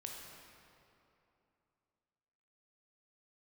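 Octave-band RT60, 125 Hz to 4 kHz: 3.0 s, 3.1 s, 2.9 s, 2.9 s, 2.3 s, 1.8 s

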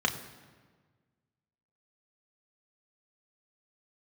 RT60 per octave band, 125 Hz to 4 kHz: 2.0 s, 1.8 s, 1.6 s, 1.4 s, 1.3 s, 1.1 s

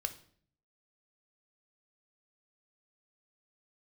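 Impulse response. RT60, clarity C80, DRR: 0.55 s, 18.0 dB, 8.0 dB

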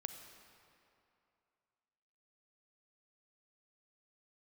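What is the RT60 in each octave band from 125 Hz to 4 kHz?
2.5 s, 2.5 s, 2.6 s, 2.7 s, 2.3 s, 1.9 s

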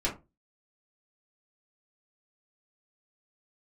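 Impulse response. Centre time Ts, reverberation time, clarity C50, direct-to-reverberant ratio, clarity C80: 18 ms, 0.25 s, 11.0 dB, -5.5 dB, 19.0 dB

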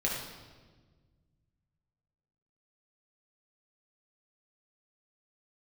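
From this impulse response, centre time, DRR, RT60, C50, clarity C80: 64 ms, -3.5 dB, 1.4 s, 1.0 dB, 3.5 dB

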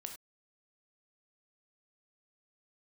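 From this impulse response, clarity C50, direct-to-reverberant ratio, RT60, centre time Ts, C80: 8.0 dB, 4.5 dB, no single decay rate, 15 ms, 12.5 dB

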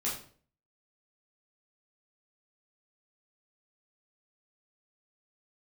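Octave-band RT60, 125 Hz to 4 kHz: 0.60 s, 0.55 s, 0.50 s, 0.45 s, 0.40 s, 0.40 s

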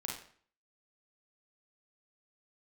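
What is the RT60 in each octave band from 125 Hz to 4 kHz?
0.50 s, 0.55 s, 0.50 s, 0.50 s, 0.50 s, 0.45 s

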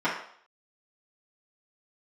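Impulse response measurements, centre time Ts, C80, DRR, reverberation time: 35 ms, 8.5 dB, -11.0 dB, 0.60 s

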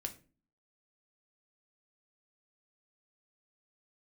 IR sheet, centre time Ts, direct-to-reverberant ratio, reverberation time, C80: 8 ms, 5.0 dB, 0.35 s, 20.0 dB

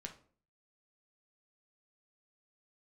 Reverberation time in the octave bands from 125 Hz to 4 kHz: 0.60 s, 0.60 s, 0.50 s, 0.40 s, 0.35 s, 0.30 s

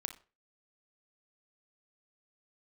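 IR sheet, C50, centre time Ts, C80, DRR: 10.0 dB, 11 ms, 18.5 dB, 6.0 dB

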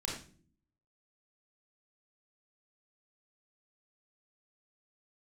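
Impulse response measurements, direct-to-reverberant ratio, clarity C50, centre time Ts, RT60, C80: -2.5 dB, 2.5 dB, 40 ms, no single decay rate, 7.5 dB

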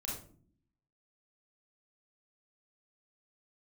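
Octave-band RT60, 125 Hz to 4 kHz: 0.95 s, 0.95 s, 0.60 s, 0.40 s, 0.35 s, 0.30 s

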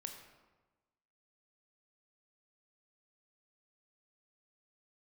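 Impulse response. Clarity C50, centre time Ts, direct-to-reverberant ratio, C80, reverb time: 6.5 dB, 30 ms, 4.0 dB, 8.0 dB, 1.2 s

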